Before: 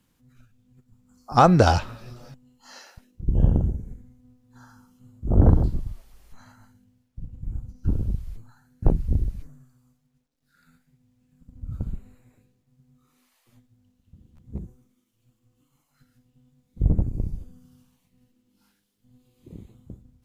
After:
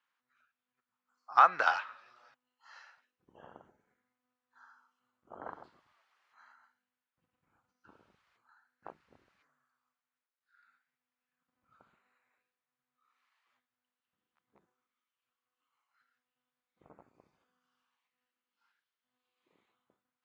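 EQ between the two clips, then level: ladder band-pass 1600 Hz, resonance 30%; dynamic EQ 1900 Hz, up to +5 dB, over -49 dBFS, Q 0.79; +4.5 dB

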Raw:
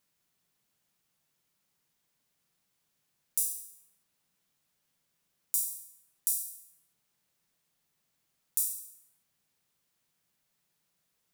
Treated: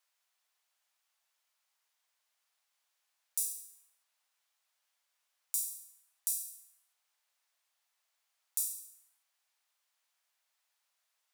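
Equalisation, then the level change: HPF 670 Hz 24 dB/oct; high shelf 10000 Hz -7 dB; 0.0 dB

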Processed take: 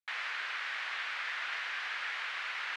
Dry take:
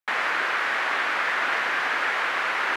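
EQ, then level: band-pass 3700 Hz, Q 0.93; -7.0 dB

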